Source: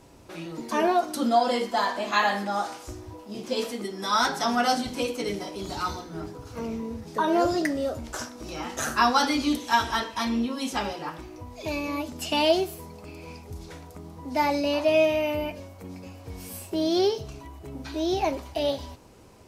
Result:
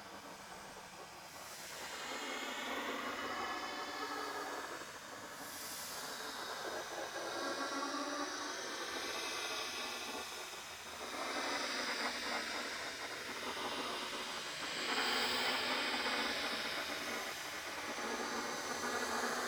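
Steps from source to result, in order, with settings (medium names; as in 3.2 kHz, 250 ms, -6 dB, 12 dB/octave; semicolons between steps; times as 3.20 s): spectral levelling over time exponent 0.6; Doppler pass-by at 4.04 s, 55 m/s, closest 5.4 m; in parallel at -7 dB: bit crusher 6-bit; on the sum: Paulstretch 11×, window 0.10 s, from 0.44 s; hum notches 60/120/180/240/300/360/420/480 Hz; spectral gate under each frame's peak -10 dB weak; trim +15.5 dB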